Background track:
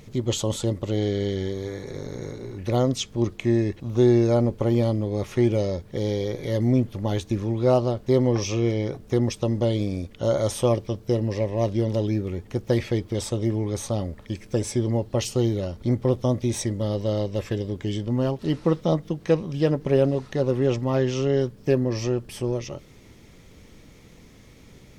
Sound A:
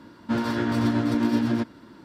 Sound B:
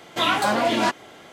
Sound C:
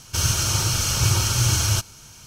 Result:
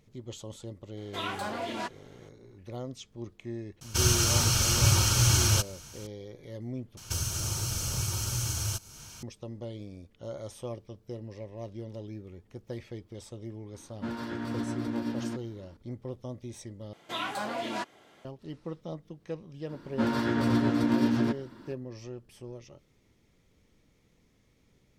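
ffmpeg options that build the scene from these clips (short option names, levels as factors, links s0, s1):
-filter_complex "[2:a]asplit=2[s0][s1];[3:a]asplit=2[s2][s3];[1:a]asplit=2[s4][s5];[0:a]volume=0.141[s6];[s3]acrossover=split=740|6100[s7][s8][s9];[s7]acompressor=threshold=0.0316:ratio=4[s10];[s8]acompressor=threshold=0.00891:ratio=4[s11];[s9]acompressor=threshold=0.02:ratio=4[s12];[s10][s11][s12]amix=inputs=3:normalize=0[s13];[s6]asplit=3[s14][s15][s16];[s14]atrim=end=6.974[s17];[s13]atrim=end=2.26,asetpts=PTS-STARTPTS,volume=0.794[s18];[s15]atrim=start=9.226:end=16.934[s19];[s1]atrim=end=1.32,asetpts=PTS-STARTPTS,volume=0.224[s20];[s16]atrim=start=18.246[s21];[s0]atrim=end=1.32,asetpts=PTS-STARTPTS,volume=0.2,afade=t=in:d=0.004:c=hsin,afade=t=out:st=1.316:d=0.004:c=hsin,adelay=970[s22];[s2]atrim=end=2.26,asetpts=PTS-STARTPTS,volume=0.708,afade=t=in:d=0.004:c=hsin,afade=t=out:st=2.256:d=0.004:c=hsin,adelay=168021S[s23];[s4]atrim=end=2.04,asetpts=PTS-STARTPTS,volume=0.299,afade=t=in:d=0.004:c=hsin,afade=t=out:st=2.036:d=0.004:c=hsin,adelay=13730[s24];[s5]atrim=end=2.04,asetpts=PTS-STARTPTS,volume=0.75,afade=t=in:d=0.004:c=hsin,afade=t=out:st=2.036:d=0.004:c=hsin,adelay=19690[s25];[s17][s18]acrossfade=d=0.004:c1=hsin:c2=hsin[s26];[s26][s19]acrossfade=d=0.004:c1=hsin:c2=hsin[s27];[s27][s20]acrossfade=d=0.004:c1=hsin:c2=hsin[s28];[s28][s21]acrossfade=d=0.004:c1=hsin:c2=hsin[s29];[s29][s22][s23][s24][s25]amix=inputs=5:normalize=0"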